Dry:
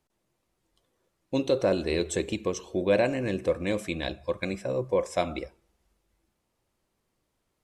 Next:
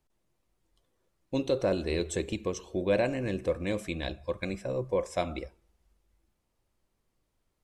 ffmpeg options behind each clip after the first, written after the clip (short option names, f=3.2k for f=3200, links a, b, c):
-af "lowshelf=f=62:g=12,volume=-3.5dB"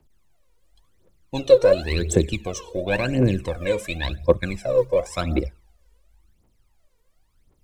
-filter_complex "[0:a]acrossover=split=100|1100|1800[a][b][c][d];[a]acrusher=samples=15:mix=1:aa=0.000001:lfo=1:lforange=24:lforate=3.4[e];[e][b][c][d]amix=inputs=4:normalize=0,aphaser=in_gain=1:out_gain=1:delay=2.2:decay=0.78:speed=0.93:type=triangular,volume=4.5dB"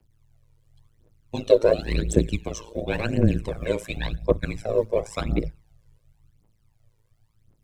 -af "afreqshift=-21,tremolo=f=110:d=0.947,lowshelf=f=250:g=4"